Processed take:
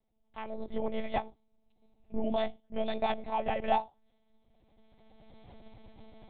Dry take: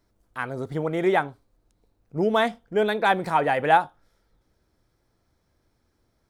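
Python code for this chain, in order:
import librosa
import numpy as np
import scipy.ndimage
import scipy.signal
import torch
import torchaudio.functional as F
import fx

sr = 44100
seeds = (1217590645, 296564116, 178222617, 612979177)

y = fx.recorder_agc(x, sr, target_db=-9.5, rise_db_per_s=18.0, max_gain_db=30)
y = fx.fixed_phaser(y, sr, hz=380.0, stages=6)
y = fx.lpc_monotone(y, sr, seeds[0], pitch_hz=220.0, order=10)
y = y * librosa.db_to_amplitude(-8.5)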